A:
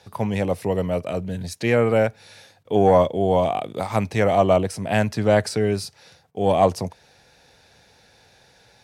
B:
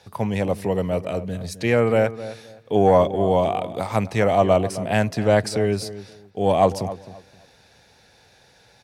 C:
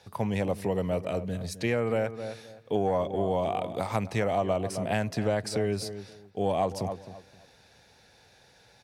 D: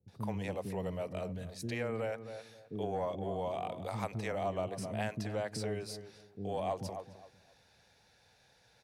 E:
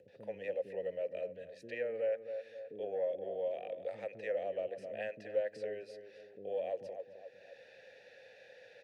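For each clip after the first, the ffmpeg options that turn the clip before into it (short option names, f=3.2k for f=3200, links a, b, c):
-filter_complex "[0:a]asplit=2[a][b];[b]adelay=262,lowpass=f=1.8k:p=1,volume=-14dB,asplit=2[c][d];[d]adelay=262,lowpass=f=1.8k:p=1,volume=0.24,asplit=2[e][f];[f]adelay=262,lowpass=f=1.8k:p=1,volume=0.24[g];[a][c][e][g]amix=inputs=4:normalize=0"
-af "acompressor=threshold=-19dB:ratio=6,volume=-4dB"
-filter_complex "[0:a]acrossover=split=340[a][b];[b]adelay=80[c];[a][c]amix=inputs=2:normalize=0,volume=-7.5dB"
-filter_complex "[0:a]acompressor=mode=upward:threshold=-39dB:ratio=2.5,asplit=3[a][b][c];[a]bandpass=f=530:t=q:w=8,volume=0dB[d];[b]bandpass=f=1.84k:t=q:w=8,volume=-6dB[e];[c]bandpass=f=2.48k:t=q:w=8,volume=-9dB[f];[d][e][f]amix=inputs=3:normalize=0,volume=7dB"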